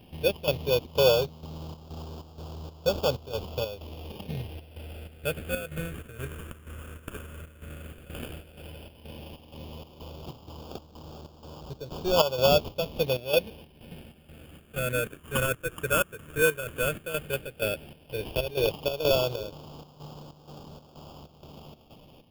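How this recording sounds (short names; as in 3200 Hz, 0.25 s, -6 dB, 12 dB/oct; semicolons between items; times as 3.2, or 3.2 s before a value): chopped level 2.1 Hz, depth 65%, duty 65%; aliases and images of a low sample rate 2000 Hz, jitter 0%; phasing stages 4, 0.11 Hz, lowest notch 800–1900 Hz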